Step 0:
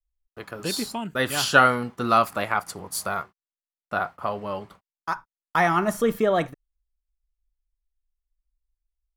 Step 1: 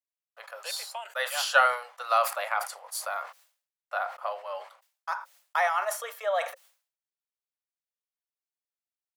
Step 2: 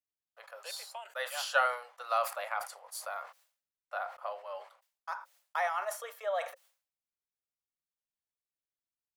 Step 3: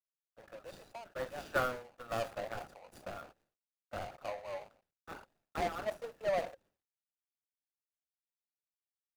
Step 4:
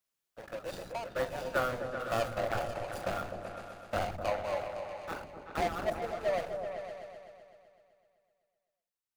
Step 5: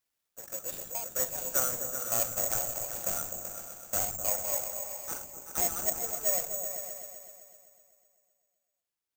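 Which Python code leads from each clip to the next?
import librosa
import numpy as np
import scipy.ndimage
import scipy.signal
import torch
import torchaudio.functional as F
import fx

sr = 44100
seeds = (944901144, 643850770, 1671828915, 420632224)

y1 = scipy.signal.sosfilt(scipy.signal.cheby1(6, 1.0, 530.0, 'highpass', fs=sr, output='sos'), x)
y1 = fx.sustainer(y1, sr, db_per_s=130.0)
y1 = y1 * librosa.db_to_amplitude(-4.0)
y2 = fx.low_shelf(y1, sr, hz=320.0, db=10.0)
y2 = y2 * librosa.db_to_amplitude(-7.5)
y3 = scipy.ndimage.median_filter(y2, 41, mode='constant')
y3 = y3 * librosa.db_to_amplitude(4.0)
y4 = fx.rider(y3, sr, range_db=5, speed_s=0.5)
y4 = fx.echo_opening(y4, sr, ms=127, hz=200, octaves=2, feedback_pct=70, wet_db=-3)
y4 = y4 * librosa.db_to_amplitude(4.5)
y5 = (np.kron(y4[::6], np.eye(6)[0]) * 6)[:len(y4)]
y5 = y5 * librosa.db_to_amplitude(-5.5)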